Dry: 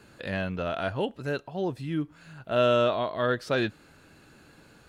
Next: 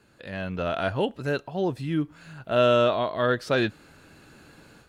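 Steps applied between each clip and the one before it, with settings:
automatic gain control gain up to 10 dB
level −6.5 dB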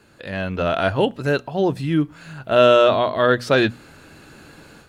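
mains-hum notches 60/120/180/240 Hz
level +7 dB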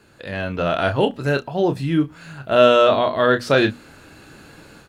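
double-tracking delay 29 ms −9 dB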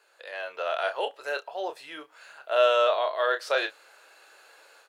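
inverse Chebyshev high-pass filter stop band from 250 Hz, stop band 40 dB
level −7 dB

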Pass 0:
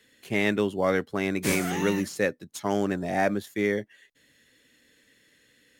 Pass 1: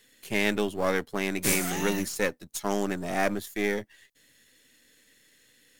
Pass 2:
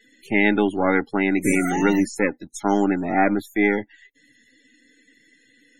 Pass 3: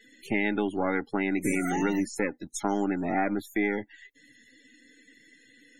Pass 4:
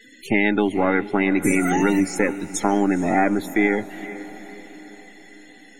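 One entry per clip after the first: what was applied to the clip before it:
gain on one half-wave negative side −7 dB; high-shelf EQ 4,900 Hz +10 dB
spectral peaks only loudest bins 64; hollow resonant body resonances 290/810/1,400/2,000 Hz, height 11 dB, ringing for 25 ms; level +2.5 dB
downward compressor 2.5 to 1, threshold −27 dBFS, peak gain reduction 10 dB
feedback delay with all-pass diffusion 462 ms, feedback 52%, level −15 dB; level +8 dB

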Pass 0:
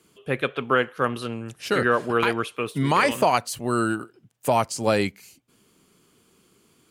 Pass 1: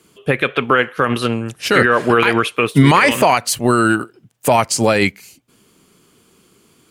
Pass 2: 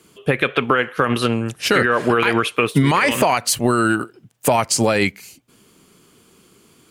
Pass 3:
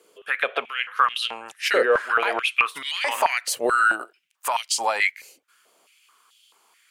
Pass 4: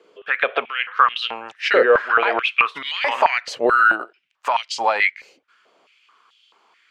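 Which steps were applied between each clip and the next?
dynamic equaliser 2,100 Hz, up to +6 dB, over −38 dBFS, Q 1.4; boost into a limiter +16 dB; expander for the loud parts 1.5 to 1, over −25 dBFS
downward compressor, threshold −13 dBFS, peak gain reduction 7.5 dB; level +1 dB
high-pass on a step sequencer 4.6 Hz 500–3,200 Hz; level −7.5 dB
high-frequency loss of the air 190 metres; level +5.5 dB

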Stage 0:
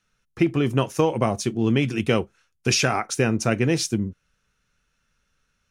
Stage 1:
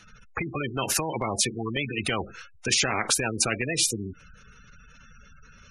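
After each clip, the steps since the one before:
gate on every frequency bin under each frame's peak −20 dB strong
brickwall limiter −12 dBFS, peak gain reduction 4.5 dB
every bin compressed towards the loudest bin 4 to 1
level +3 dB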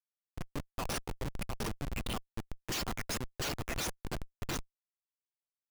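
time-frequency cells dropped at random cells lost 70%
repeating echo 704 ms, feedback 29%, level −4 dB
comparator with hysteresis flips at −28.5 dBFS
level +1 dB

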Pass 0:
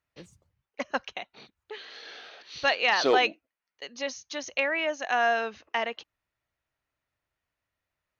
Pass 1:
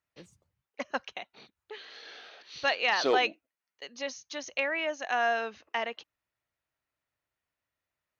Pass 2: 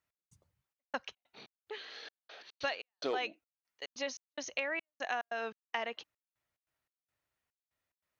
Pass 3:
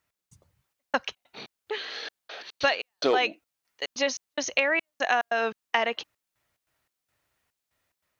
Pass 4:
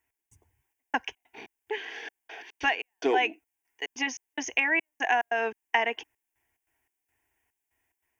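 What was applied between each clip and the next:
low-shelf EQ 65 Hz −9 dB; level −3 dB
downward compressor 5 to 1, threshold −32 dBFS, peak gain reduction 10.5 dB; gate pattern "x..xxxx..xx.x" 144 BPM −60 dB
automatic gain control gain up to 3 dB; level +8.5 dB
phaser with its sweep stopped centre 840 Hz, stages 8; level +1.5 dB

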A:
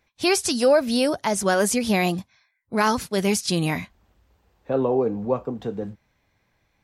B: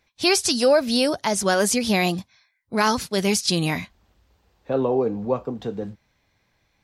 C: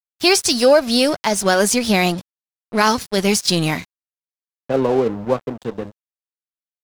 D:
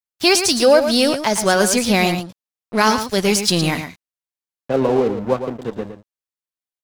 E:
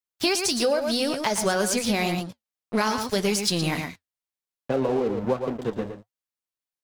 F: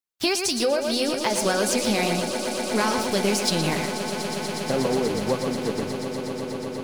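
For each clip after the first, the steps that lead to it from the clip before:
parametric band 4,500 Hz +5 dB 1.3 octaves
dead-zone distortion −35 dBFS; level +5.5 dB
single-tap delay 113 ms −9 dB
downward compressor, threshold −19 dBFS, peak gain reduction 11 dB; flanger 1.8 Hz, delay 3.8 ms, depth 4.8 ms, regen −70%; level +3 dB
echo that builds up and dies away 121 ms, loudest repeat 8, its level −14.5 dB

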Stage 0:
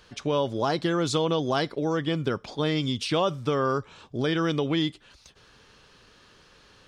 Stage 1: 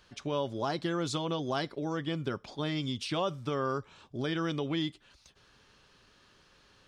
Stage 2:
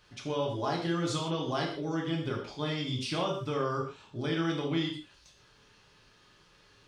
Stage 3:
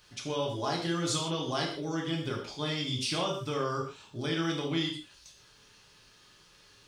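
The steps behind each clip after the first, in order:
notch filter 470 Hz, Q 12; level −6.5 dB
reverb whose tail is shaped and stops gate 190 ms falling, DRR −2.5 dB; level −3 dB
high-shelf EQ 4,200 Hz +11.5 dB; level −1 dB

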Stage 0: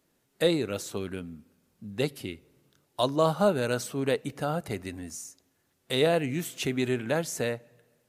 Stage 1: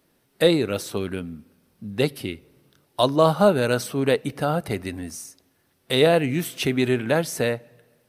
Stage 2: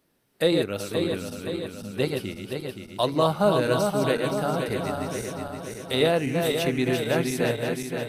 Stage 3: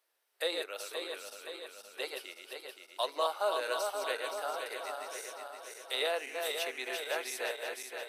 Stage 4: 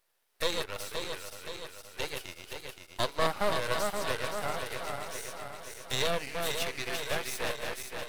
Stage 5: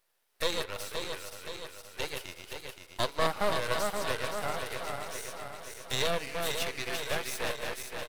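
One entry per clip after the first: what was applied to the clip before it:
parametric band 7,000 Hz −10.5 dB 0.24 octaves; level +6.5 dB
feedback delay that plays each chunk backwards 261 ms, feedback 75%, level −4.5 dB; level −4.5 dB
Bessel high-pass filter 740 Hz, order 6; level −5.5 dB
half-wave rectification; level +7 dB
far-end echo of a speakerphone 190 ms, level −19 dB

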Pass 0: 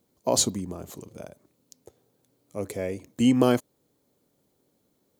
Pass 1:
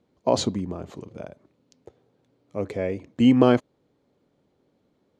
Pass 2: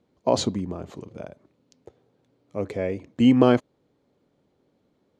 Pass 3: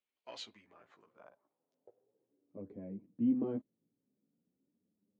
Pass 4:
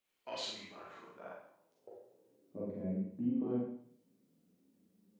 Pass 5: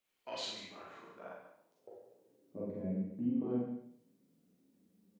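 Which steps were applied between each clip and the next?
low-pass filter 3,200 Hz 12 dB per octave; level +3.5 dB
no processing that can be heard
harmonic generator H 6 −33 dB, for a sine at −3 dBFS; multi-voice chorus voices 2, 0.39 Hz, delay 14 ms, depth 4.6 ms; band-pass filter sweep 2,700 Hz → 210 Hz, 0:00.44–0:02.82; level −6 dB
downward compressor 2 to 1, threshold −50 dBFS, peak gain reduction 13 dB; four-comb reverb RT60 0.61 s, combs from 33 ms, DRR −4.5 dB; level +5 dB
single-tap delay 145 ms −11.5 dB

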